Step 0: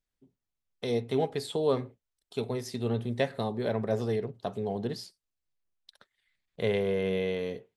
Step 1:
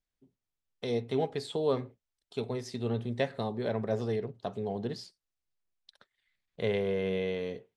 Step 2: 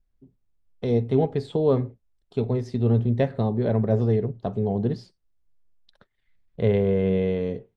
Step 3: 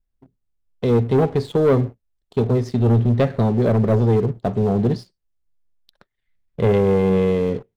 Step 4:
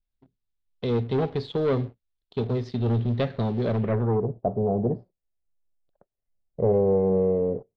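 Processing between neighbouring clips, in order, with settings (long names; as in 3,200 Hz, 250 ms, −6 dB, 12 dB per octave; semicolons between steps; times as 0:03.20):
low-pass filter 7,700 Hz 12 dB per octave; level −2 dB
spectral tilt −3.5 dB per octave; level +3.5 dB
leveller curve on the samples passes 2
low-pass filter sweep 3,900 Hz → 650 Hz, 0:03.75–0:04.28; level −8 dB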